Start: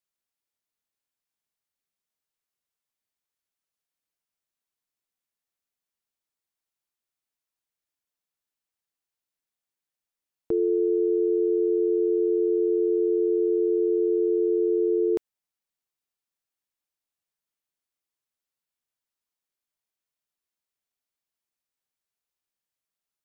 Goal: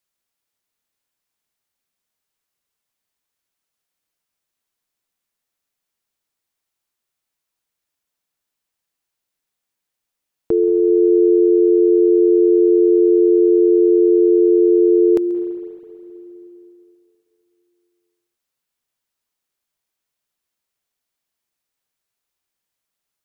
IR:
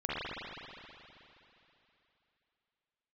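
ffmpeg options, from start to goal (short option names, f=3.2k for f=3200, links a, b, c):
-filter_complex "[0:a]asplit=2[a][b];[1:a]atrim=start_sample=2205,adelay=135[c];[b][c]afir=irnorm=-1:irlink=0,volume=-19dB[d];[a][d]amix=inputs=2:normalize=0,volume=8dB"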